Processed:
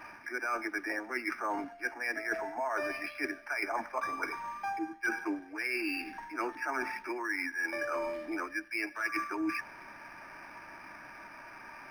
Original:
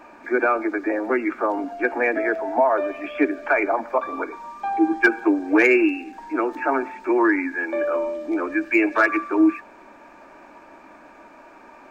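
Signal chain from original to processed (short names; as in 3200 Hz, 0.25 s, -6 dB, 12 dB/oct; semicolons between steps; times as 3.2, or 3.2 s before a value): ten-band EQ 125 Hz +10 dB, 250 Hz -6 dB, 500 Hz -8 dB, 2000 Hz +11 dB; reverse; compressor 10:1, threshold -27 dBFS, peak gain reduction 21.5 dB; reverse; decimation joined by straight lines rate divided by 6×; gain -3 dB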